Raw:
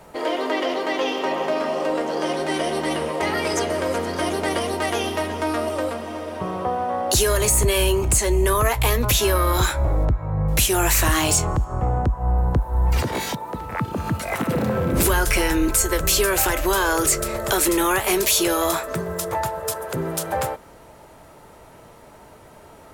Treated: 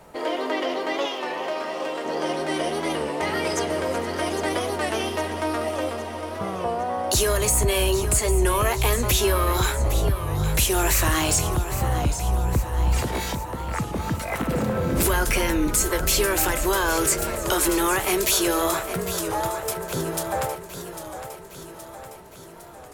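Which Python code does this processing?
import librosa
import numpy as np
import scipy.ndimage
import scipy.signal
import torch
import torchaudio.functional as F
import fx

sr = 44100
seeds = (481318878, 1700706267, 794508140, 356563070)

y = fx.low_shelf(x, sr, hz=460.0, db=-10.0, at=(1.06, 2.06))
y = fx.echo_feedback(y, sr, ms=810, feedback_pct=58, wet_db=-11.0)
y = fx.record_warp(y, sr, rpm=33.33, depth_cents=100.0)
y = y * librosa.db_to_amplitude(-2.5)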